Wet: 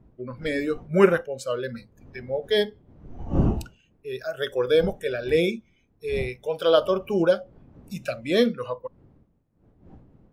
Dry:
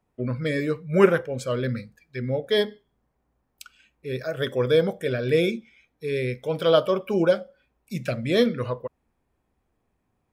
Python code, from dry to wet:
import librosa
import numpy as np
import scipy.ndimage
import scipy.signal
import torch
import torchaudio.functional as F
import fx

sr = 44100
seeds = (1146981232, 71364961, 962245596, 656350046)

y = fx.dmg_wind(x, sr, seeds[0], corner_hz=220.0, level_db=-34.0)
y = fx.noise_reduce_blind(y, sr, reduce_db=12)